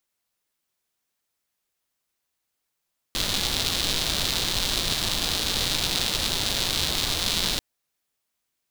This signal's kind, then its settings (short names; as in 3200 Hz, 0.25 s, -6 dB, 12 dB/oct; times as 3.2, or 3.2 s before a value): rain from filtered ticks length 4.44 s, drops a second 230, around 3800 Hz, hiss -3 dB